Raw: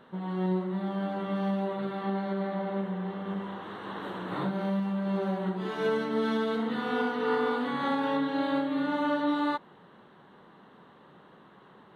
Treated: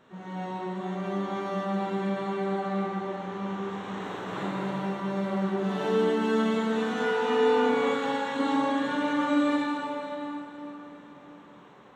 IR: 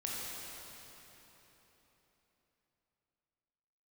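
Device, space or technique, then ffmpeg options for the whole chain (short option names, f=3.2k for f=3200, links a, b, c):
shimmer-style reverb: -filter_complex "[0:a]asettb=1/sr,asplit=3[a][b][c];[a]atrim=end=6.454[d];[b]atrim=start=6.45:end=7.13,asetpts=PTS-STARTPTS,afade=t=in:d=0.004:c=qsin,afade=t=out:st=0.676:d=0.004:c=qsin,bandreject=f=50:t=h:w=6,bandreject=f=100:t=h:w=6,bandreject=f=150:t=h:w=6,bandreject=f=200:t=h:w=6,bandreject=f=250:t=h:w=6,bandreject=f=300:t=h:w=6,bandreject=f=350:t=h:w=6,bandreject=f=400:t=h:w=6,bandreject=f=450:t=h:w=6,bandreject=f=500:t=h:w=6[e];[c]atrim=start=7.126[f];[d][e]acrossfade=d=0.004:c1=hsin:c2=qsin[g];[g][f]acrossfade=d=0.004:c1=qsin:c2=hsin,asplit=2[h][i];[i]asetrate=88200,aresample=44100,atempo=0.5,volume=-10dB[j];[h][j]amix=inputs=2:normalize=0[k];[1:a]atrim=start_sample=2205[l];[k][l]afir=irnorm=-1:irlink=0,asettb=1/sr,asplit=3[m][n][o];[m]atrim=end=7.944[p];[n]atrim=start=7.94:end=8.39,asetpts=PTS-STARTPTS,afade=t=in:d=0.004:c=qsin,afade=t=out:st=0.446:d=0.004:c=qsin,equalizer=f=290:t=o:w=2.3:g=-5.5[q];[o]atrim=start=8.386[r];[p][q]acrossfade=d=0.004:c1=hsin:c2=qsin[s];[s][r]acrossfade=d=0.004:c1=qsin:c2=hsin,volume=-1.5dB"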